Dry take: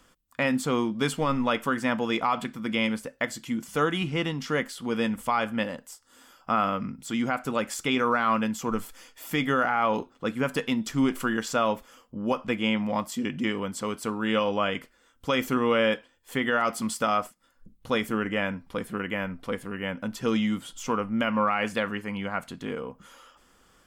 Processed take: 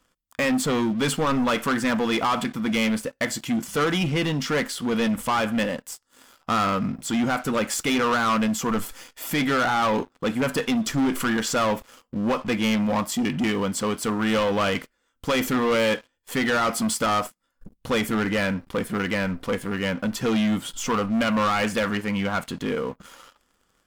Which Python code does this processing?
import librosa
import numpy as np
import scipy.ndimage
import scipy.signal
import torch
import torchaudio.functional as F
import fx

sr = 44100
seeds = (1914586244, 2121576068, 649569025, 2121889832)

y = fx.leveller(x, sr, passes=3)
y = y * librosa.db_to_amplitude(-3.0)